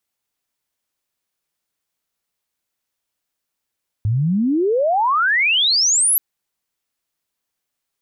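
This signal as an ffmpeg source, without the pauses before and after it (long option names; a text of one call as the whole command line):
ffmpeg -f lavfi -i "aevalsrc='pow(10,(-15+2.5*t/2.13)/20)*sin(2*PI*100*2.13/log(12000/100)*(exp(log(12000/100)*t/2.13)-1))':duration=2.13:sample_rate=44100" out.wav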